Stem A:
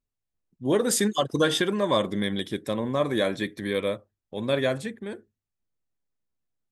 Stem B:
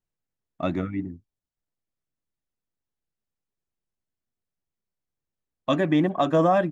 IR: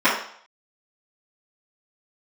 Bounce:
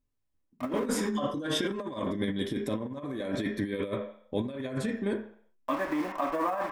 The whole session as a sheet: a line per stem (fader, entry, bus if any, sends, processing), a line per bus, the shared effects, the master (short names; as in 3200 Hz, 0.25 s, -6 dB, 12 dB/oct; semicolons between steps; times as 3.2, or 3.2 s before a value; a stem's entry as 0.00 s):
-5.0 dB, 0.00 s, send -22 dB, low shelf 340 Hz +9 dB; limiter -15 dBFS, peak gain reduction 6.5 dB; auto duck -10 dB, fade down 0.20 s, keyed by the second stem
-17.0 dB, 0.00 s, send -20 dB, level-crossing sampler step -27 dBFS; de-esser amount 60%; ten-band EQ 125 Hz -10 dB, 1000 Hz +10 dB, 2000 Hz +8 dB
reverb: on, RT60 0.60 s, pre-delay 3 ms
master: negative-ratio compressor -30 dBFS, ratio -0.5